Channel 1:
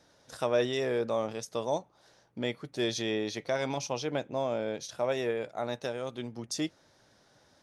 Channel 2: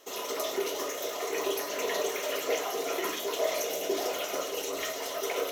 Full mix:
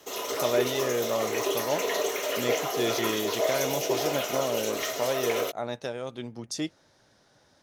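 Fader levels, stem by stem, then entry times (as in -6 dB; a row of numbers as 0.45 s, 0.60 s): +1.0 dB, +2.5 dB; 0.00 s, 0.00 s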